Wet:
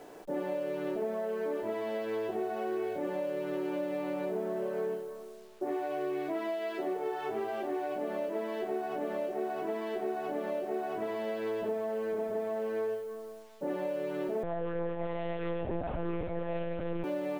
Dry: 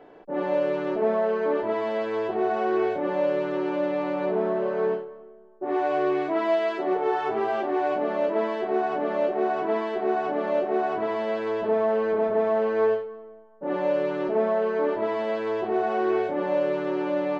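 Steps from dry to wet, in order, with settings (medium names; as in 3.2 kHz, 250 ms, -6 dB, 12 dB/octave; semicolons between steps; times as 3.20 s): compression 6:1, threshold -30 dBFS, peak gain reduction 11.5 dB; dynamic bell 1.1 kHz, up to -6 dB, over -48 dBFS, Q 1.3; bit crusher 10-bit; 14.43–17.04 s: monotone LPC vocoder at 8 kHz 170 Hz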